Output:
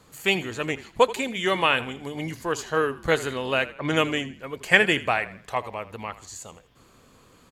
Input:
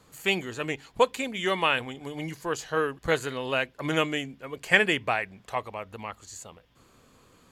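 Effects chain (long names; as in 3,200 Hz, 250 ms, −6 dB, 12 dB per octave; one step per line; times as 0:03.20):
0:03.69–0:04.34: low-pass that shuts in the quiet parts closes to 2,000 Hz, open at −21.5 dBFS
echo with shifted repeats 81 ms, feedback 38%, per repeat −44 Hz, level −16.5 dB
level +3 dB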